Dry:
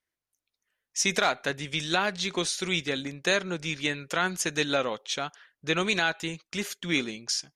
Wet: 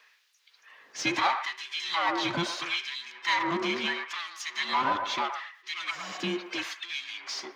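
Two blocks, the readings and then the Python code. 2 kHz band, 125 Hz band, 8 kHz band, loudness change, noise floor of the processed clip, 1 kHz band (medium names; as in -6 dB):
-2.5 dB, -7.5 dB, -10.0 dB, -2.0 dB, -64 dBFS, +3.5 dB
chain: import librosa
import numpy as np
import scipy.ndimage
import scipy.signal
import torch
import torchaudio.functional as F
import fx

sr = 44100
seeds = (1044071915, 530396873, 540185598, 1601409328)

p1 = fx.band_invert(x, sr, width_hz=500)
p2 = fx.spec_repair(p1, sr, seeds[0], start_s=5.93, length_s=0.22, low_hz=230.0, high_hz=8200.0, source='after')
p3 = scipy.signal.sosfilt(scipy.signal.butter(2, 58.0, 'highpass', fs=sr, output='sos'), p2)
p4 = fx.high_shelf(p3, sr, hz=7200.0, db=11.5)
p5 = fx.level_steps(p4, sr, step_db=22)
p6 = p4 + (p5 * 10.0 ** (-2.0 / 20.0))
p7 = fx.power_curve(p6, sr, exponent=0.5)
p8 = p7 + fx.echo_wet_bandpass(p7, sr, ms=114, feedback_pct=44, hz=910.0, wet_db=-5.0, dry=0)
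p9 = fx.filter_lfo_highpass(p8, sr, shape='sine', hz=0.75, low_hz=210.0, high_hz=3200.0, q=0.76)
p10 = fx.air_absorb(p9, sr, metres=240.0)
y = p10 * 10.0 ** (-8.0 / 20.0)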